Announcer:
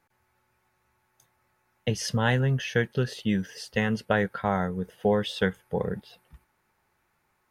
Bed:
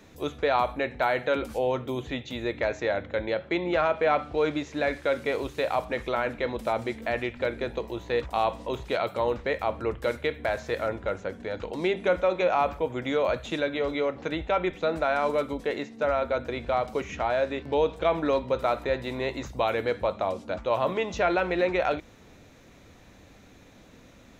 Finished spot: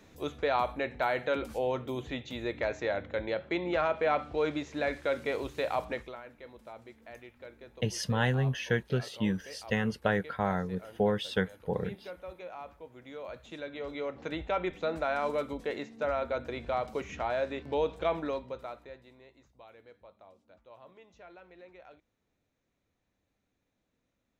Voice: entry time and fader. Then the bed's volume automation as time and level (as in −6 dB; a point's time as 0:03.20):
5.95 s, −4.0 dB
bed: 0:05.92 −4.5 dB
0:06.21 −20 dB
0:12.96 −20 dB
0:14.35 −5.5 dB
0:18.12 −5.5 dB
0:19.29 −28 dB